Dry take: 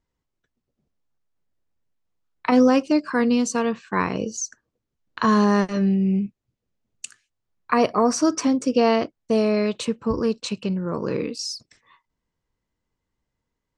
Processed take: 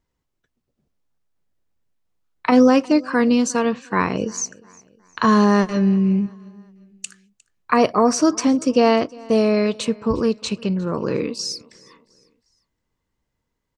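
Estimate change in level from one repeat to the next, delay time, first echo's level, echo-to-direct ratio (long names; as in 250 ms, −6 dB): −7.5 dB, 356 ms, −24.0 dB, −23.0 dB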